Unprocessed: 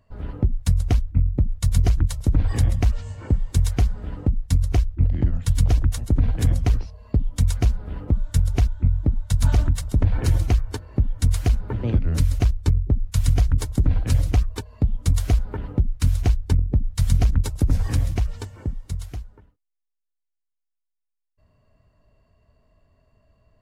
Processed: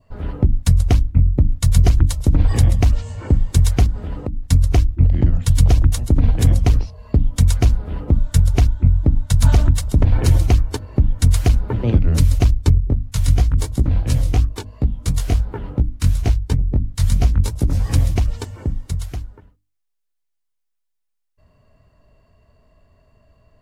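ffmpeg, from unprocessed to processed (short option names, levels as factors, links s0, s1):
-filter_complex "[0:a]asettb=1/sr,asplit=3[s0][s1][s2];[s0]atrim=end=3.864[s3];[s1]atrim=start=3.86:end=4.45,asetpts=PTS-STARTPTS,afade=t=in:d=0.004:c=qsin,afade=t=out:st=0.586:d=0.004:c=qsin,acompressor=threshold=0.0562:ratio=10:attack=3.2:release=140:knee=1:detection=peak[s4];[s2]atrim=start=4.446[s5];[s3][s4]acrossfade=d=0.004:c1=hsin:c2=qsin[s6];[s6][s5]acrossfade=d=0.004:c1=qsin:c2=hsin,asplit=3[s7][s8][s9];[s7]afade=t=out:st=12.79:d=0.02[s10];[s8]flanger=delay=15.5:depth=6.3:speed=2.9,afade=t=in:st=12.79:d=0.02,afade=t=out:st=17.92:d=0.02[s11];[s9]afade=t=in:st=17.92:d=0.02[s12];[s10][s11][s12]amix=inputs=3:normalize=0,bandreject=f=50:t=h:w=6,bandreject=f=100:t=h:w=6,bandreject=f=150:t=h:w=6,bandreject=f=200:t=h:w=6,bandreject=f=250:t=h:w=6,bandreject=f=300:t=h:w=6,adynamicequalizer=threshold=0.002:dfrequency=1600:dqfactor=1.9:tfrequency=1600:tqfactor=1.9:attack=5:release=100:ratio=0.375:range=2:mode=cutabove:tftype=bell,volume=2.11"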